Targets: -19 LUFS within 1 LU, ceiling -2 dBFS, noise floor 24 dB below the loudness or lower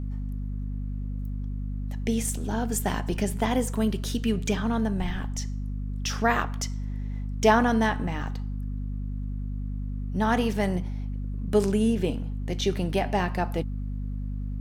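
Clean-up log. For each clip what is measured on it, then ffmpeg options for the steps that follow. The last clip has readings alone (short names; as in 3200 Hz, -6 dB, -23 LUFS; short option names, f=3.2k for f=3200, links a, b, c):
hum 50 Hz; harmonics up to 250 Hz; hum level -28 dBFS; loudness -28.0 LUFS; peak -7.5 dBFS; loudness target -19.0 LUFS
-> -af "bandreject=f=50:t=h:w=6,bandreject=f=100:t=h:w=6,bandreject=f=150:t=h:w=6,bandreject=f=200:t=h:w=6,bandreject=f=250:t=h:w=6"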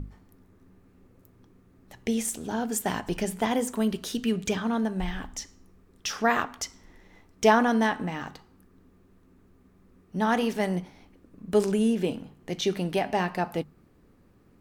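hum none; loudness -27.5 LUFS; peak -8.0 dBFS; loudness target -19.0 LUFS
-> -af "volume=8.5dB,alimiter=limit=-2dB:level=0:latency=1"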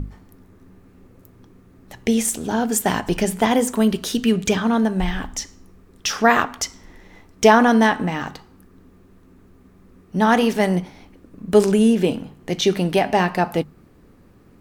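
loudness -19.5 LUFS; peak -2.0 dBFS; noise floor -51 dBFS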